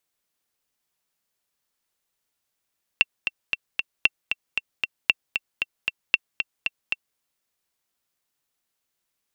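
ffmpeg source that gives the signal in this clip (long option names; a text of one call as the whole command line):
ffmpeg -f lavfi -i "aevalsrc='pow(10,(-2.5-7.5*gte(mod(t,4*60/230),60/230))/20)*sin(2*PI*2710*mod(t,60/230))*exp(-6.91*mod(t,60/230)/0.03)':duration=4.17:sample_rate=44100" out.wav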